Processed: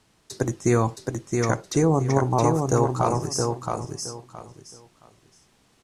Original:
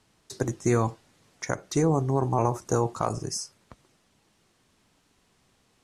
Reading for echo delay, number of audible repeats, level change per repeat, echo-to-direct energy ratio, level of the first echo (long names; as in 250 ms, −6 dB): 669 ms, 3, −13.0 dB, −4.0 dB, −4.0 dB